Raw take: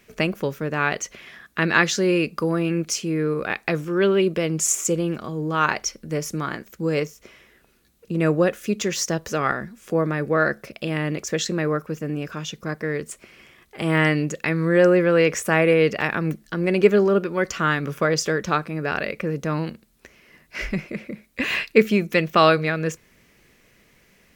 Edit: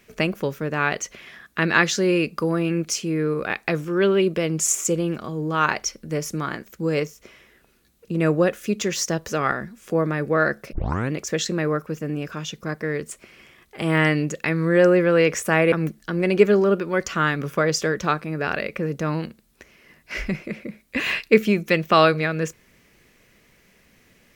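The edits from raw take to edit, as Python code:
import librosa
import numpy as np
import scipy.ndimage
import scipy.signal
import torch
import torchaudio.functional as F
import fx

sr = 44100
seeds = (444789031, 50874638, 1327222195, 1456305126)

y = fx.edit(x, sr, fx.tape_start(start_s=10.73, length_s=0.38),
    fx.cut(start_s=15.72, length_s=0.44), tone=tone)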